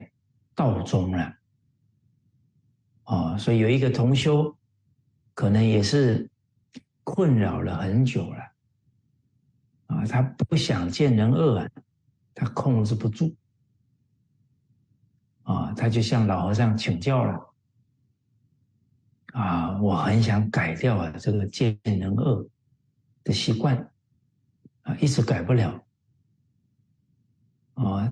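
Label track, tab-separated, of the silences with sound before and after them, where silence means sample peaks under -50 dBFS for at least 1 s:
1.350000	3.060000	silence
8.490000	9.900000	silence
13.340000	15.460000	silence
17.490000	19.290000	silence
25.800000	27.770000	silence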